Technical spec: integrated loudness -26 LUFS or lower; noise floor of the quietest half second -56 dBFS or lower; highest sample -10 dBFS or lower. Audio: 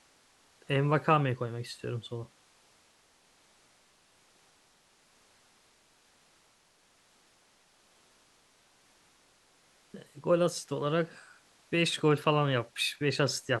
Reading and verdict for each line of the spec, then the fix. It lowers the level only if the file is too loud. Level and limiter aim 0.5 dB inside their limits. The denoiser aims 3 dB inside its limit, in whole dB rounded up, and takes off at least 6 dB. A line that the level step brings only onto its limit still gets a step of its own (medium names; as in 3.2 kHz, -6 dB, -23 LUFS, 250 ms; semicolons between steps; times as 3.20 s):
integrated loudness -30.0 LUFS: pass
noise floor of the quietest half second -66 dBFS: pass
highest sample -11.0 dBFS: pass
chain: none needed